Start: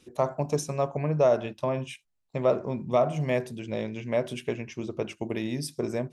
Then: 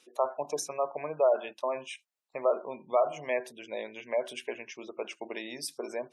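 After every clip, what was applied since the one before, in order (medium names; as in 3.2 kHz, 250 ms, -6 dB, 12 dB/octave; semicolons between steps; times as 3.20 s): high-pass 570 Hz 12 dB/octave; spectral gate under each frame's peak -25 dB strong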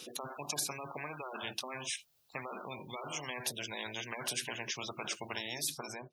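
fade out at the end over 0.58 s; ten-band graphic EQ 125 Hz +11 dB, 250 Hz -8 dB, 500 Hz -4 dB, 1 kHz -8 dB, 2 kHz -12 dB, 8 kHz -8 dB; spectrum-flattening compressor 10:1; trim +4 dB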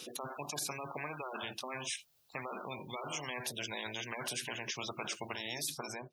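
peak limiter -27.5 dBFS, peak gain reduction 9 dB; trim +1 dB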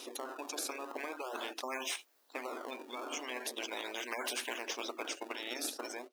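in parallel at -4.5 dB: decimation with a swept rate 25×, swing 160% 0.41 Hz; on the sum: brick-wall FIR high-pass 240 Hz; trim -1 dB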